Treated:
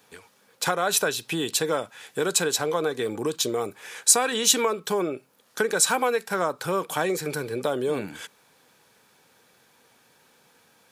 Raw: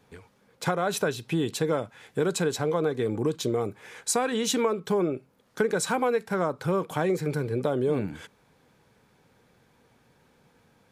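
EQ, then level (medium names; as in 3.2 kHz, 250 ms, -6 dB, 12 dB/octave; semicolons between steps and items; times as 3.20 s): tilt EQ +2.5 dB/octave; bass shelf 130 Hz -7.5 dB; band-stop 2.1 kHz, Q 17; +3.5 dB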